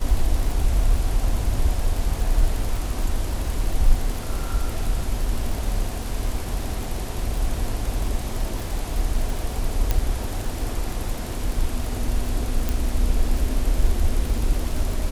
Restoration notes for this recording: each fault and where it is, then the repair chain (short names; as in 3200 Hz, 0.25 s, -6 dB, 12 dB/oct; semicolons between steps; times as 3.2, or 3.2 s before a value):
crackle 48/s -27 dBFS
9.91 pop -7 dBFS
12.69 pop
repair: de-click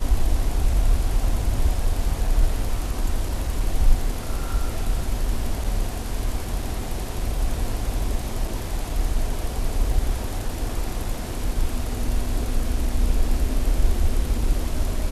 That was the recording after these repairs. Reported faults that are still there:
9.91 pop